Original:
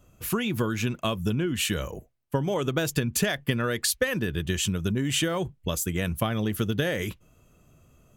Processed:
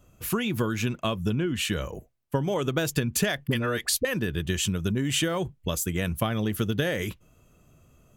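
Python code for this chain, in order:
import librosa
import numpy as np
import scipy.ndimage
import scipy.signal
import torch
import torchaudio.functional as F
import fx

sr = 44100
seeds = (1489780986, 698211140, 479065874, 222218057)

y = fx.high_shelf(x, sr, hz=7600.0, db=-7.5, at=(0.95, 1.94))
y = fx.dispersion(y, sr, late='highs', ms=42.0, hz=580.0, at=(3.47, 4.05))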